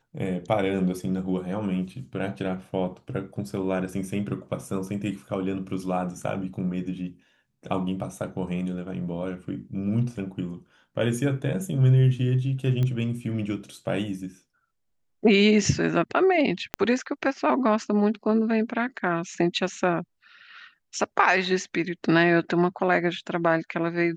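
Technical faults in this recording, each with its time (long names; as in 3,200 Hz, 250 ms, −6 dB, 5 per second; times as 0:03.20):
0:12.83: click −17 dBFS
0:16.74: click −11 dBFS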